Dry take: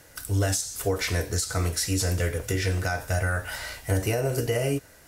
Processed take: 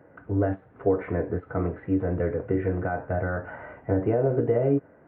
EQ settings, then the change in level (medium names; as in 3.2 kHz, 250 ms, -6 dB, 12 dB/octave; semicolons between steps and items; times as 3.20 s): Gaussian low-pass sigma 6.2 samples; high-pass 220 Hz 12 dB/octave; bass shelf 330 Hz +9.5 dB; +2.0 dB